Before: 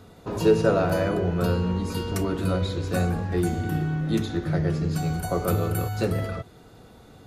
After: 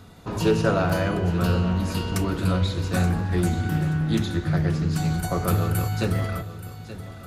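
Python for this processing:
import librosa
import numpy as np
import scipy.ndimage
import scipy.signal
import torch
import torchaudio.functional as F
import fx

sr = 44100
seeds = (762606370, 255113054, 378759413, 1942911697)

y = fx.peak_eq(x, sr, hz=460.0, db=-7.0, octaves=1.3)
y = fx.echo_feedback(y, sr, ms=878, feedback_pct=35, wet_db=-14.0)
y = fx.doppler_dist(y, sr, depth_ms=0.15)
y = y * 10.0 ** (3.5 / 20.0)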